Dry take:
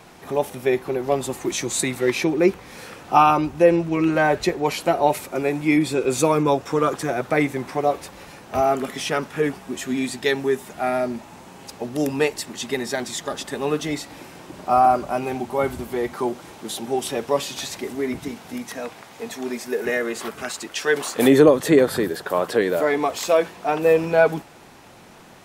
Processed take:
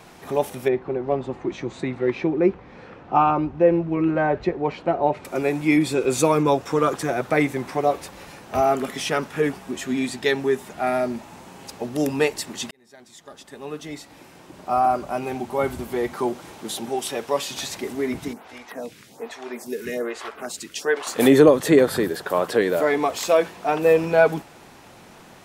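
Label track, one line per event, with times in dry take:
0.680000	5.250000	tape spacing loss at 10 kHz 36 dB
9.710000	10.870000	treble shelf 8.1 kHz -5 dB
12.710000	15.960000	fade in
16.890000	17.510000	bass shelf 360 Hz -7 dB
18.330000	21.070000	lamp-driven phase shifter 1.2 Hz

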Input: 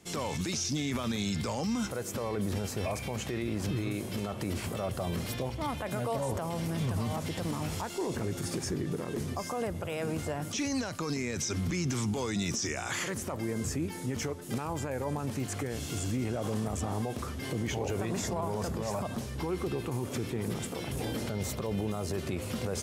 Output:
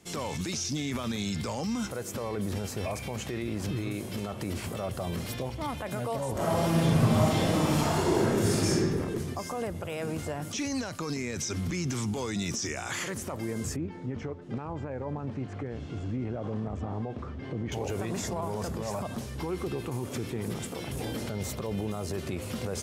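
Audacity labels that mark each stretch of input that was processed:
6.320000	8.760000	reverb throw, RT60 1.7 s, DRR -8.5 dB
13.760000	17.720000	tape spacing loss at 10 kHz 33 dB

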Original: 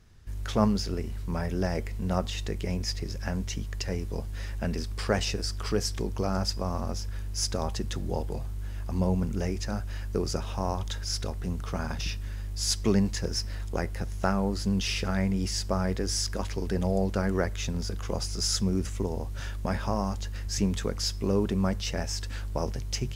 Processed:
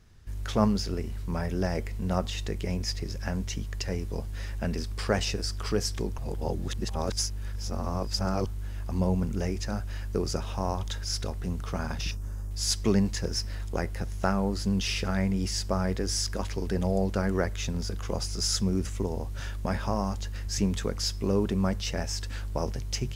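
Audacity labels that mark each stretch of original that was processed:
6.180000	8.460000	reverse
12.110000	12.510000	high-order bell 2.8 kHz -14 dB

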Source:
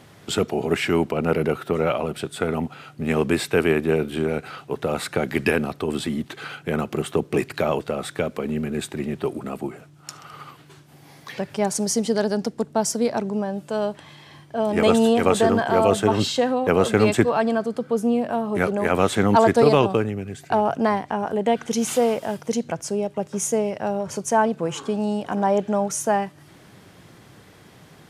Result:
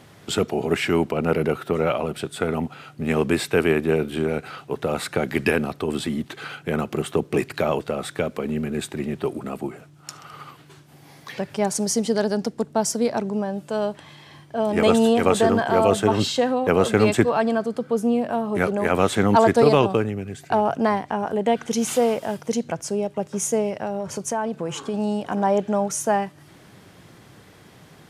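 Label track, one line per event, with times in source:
23.820000	24.940000	compression 3:1, threshold -22 dBFS

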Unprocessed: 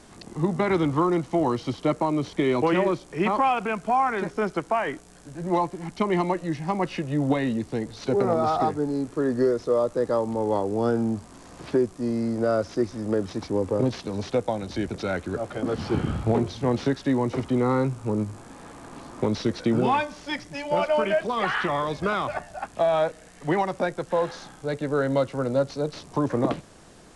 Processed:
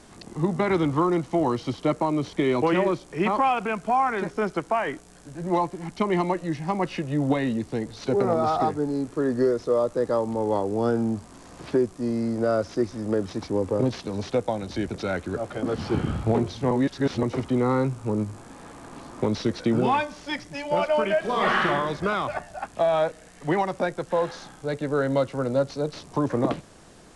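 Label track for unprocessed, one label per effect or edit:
16.710000	17.230000	reverse
21.190000	21.660000	reverb throw, RT60 0.93 s, DRR -1 dB

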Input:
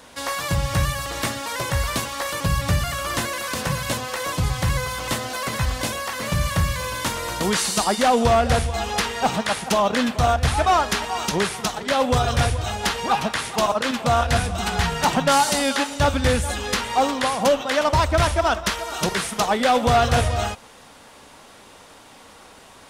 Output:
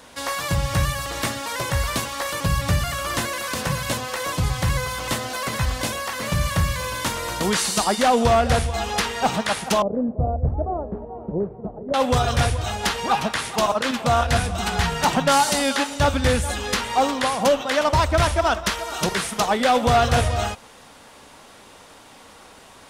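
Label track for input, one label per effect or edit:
9.820000	11.940000	Chebyshev low-pass 560 Hz, order 3

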